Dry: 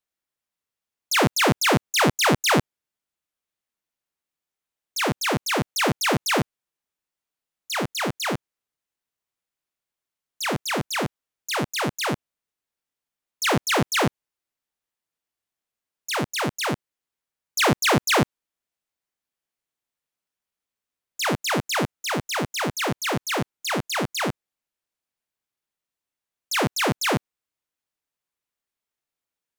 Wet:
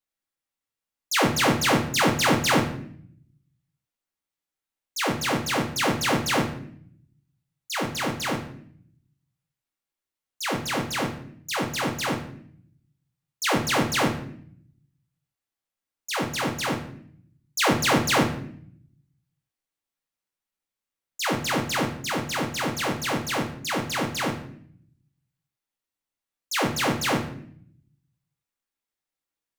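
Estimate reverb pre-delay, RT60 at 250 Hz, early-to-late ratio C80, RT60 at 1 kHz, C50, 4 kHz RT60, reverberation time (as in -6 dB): 4 ms, 1.0 s, 12.5 dB, 0.55 s, 9.0 dB, 0.50 s, 0.60 s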